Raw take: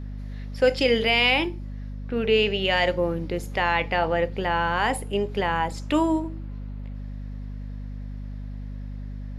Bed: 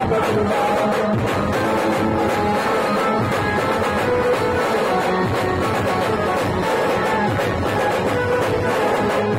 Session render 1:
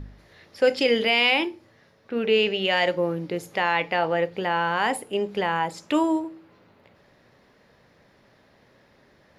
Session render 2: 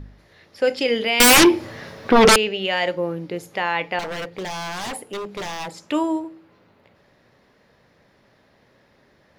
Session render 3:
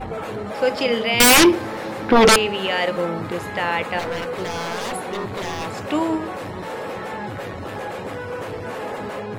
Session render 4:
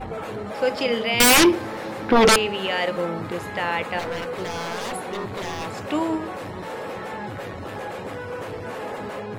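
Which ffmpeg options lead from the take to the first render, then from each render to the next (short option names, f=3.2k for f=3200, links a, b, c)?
-af "bandreject=f=50:t=h:w=4,bandreject=f=100:t=h:w=4,bandreject=f=150:t=h:w=4,bandreject=f=200:t=h:w=4,bandreject=f=250:t=h:w=4"
-filter_complex "[0:a]asettb=1/sr,asplit=3[a][b][c];[a]atrim=end=1.204[d];[b]atrim=start=1.2:end=2.36,asetpts=PTS-STARTPTS,afade=t=in:d=0.004:c=qsin,afade=t=out:st=1.156:d=0.004:c=qsin,aeval=exprs='0.398*sin(PI/2*7.08*val(0)/0.398)':c=same[e];[c]atrim=start=2.356[f];[d][e]acrossfade=d=0.004:c1=hsin:c2=qsin[g];[g][f]acrossfade=d=0.004:c1=qsin:c2=hsin,asettb=1/sr,asplit=3[h][i][j];[h]atrim=end=3.994[k];[i]atrim=start=3.99:end=5.82,asetpts=PTS-STARTPTS,afade=t=in:d=0.004:c=qsin,afade=t=out:st=1.826:d=0.004:c=qsin,aeval=exprs='0.0631*(abs(mod(val(0)/0.0631+3,4)-2)-1)':c=same[l];[j]atrim=start=5.816[m];[k][l]acrossfade=d=0.004:c1=hsin:c2=qsin[n];[n][m]acrossfade=d=0.004:c1=qsin:c2=hsin"
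-filter_complex "[1:a]volume=-11dB[a];[0:a][a]amix=inputs=2:normalize=0"
-af "volume=-2.5dB"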